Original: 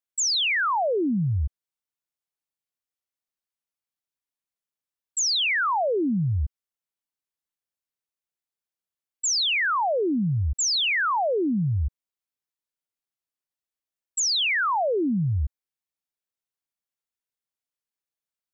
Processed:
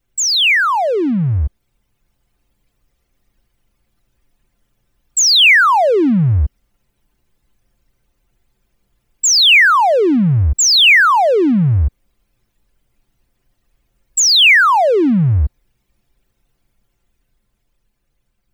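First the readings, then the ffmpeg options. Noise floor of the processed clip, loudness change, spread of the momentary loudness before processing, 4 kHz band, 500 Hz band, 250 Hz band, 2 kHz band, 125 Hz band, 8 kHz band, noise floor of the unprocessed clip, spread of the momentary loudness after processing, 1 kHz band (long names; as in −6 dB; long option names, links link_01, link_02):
−68 dBFS, +12.5 dB, 9 LU, +13.5 dB, +11.0 dB, +11.0 dB, +14.5 dB, +11.0 dB, can't be measured, below −85 dBFS, 12 LU, +11.5 dB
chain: -af "aeval=exprs='val(0)+0.5*0.015*sgn(val(0))':channel_layout=same,anlmdn=3.98,equalizer=frequency=2400:width_type=o:width=1.2:gain=5,dynaudnorm=framelen=300:gausssize=11:maxgain=4dB,volume=6.5dB"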